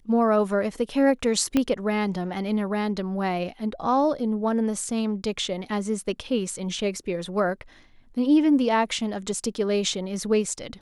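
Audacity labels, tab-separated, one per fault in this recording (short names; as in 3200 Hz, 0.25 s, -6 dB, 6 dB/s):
1.570000	1.570000	pop -10 dBFS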